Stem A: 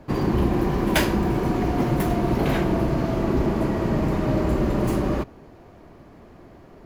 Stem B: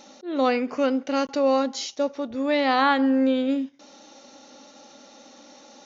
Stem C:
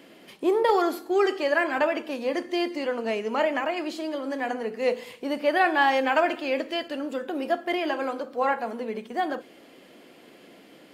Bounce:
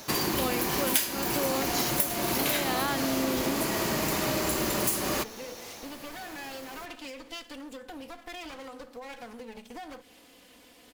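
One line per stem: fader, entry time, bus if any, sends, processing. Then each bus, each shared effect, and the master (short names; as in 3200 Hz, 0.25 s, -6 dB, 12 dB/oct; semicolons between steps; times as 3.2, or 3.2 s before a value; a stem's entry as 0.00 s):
+2.0 dB, 0.00 s, no send, tilt +3.5 dB/oct
-4.5 dB, 0.00 s, no send, dry
-5.5 dB, 0.60 s, no send, minimum comb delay 4 ms; limiter -21.5 dBFS, peak gain reduction 10 dB; compressor 6:1, threshold -35 dBFS, peak gain reduction 9.5 dB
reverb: off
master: high shelf 3300 Hz +11.5 dB; compressor 5:1, threshold -25 dBFS, peak gain reduction 20 dB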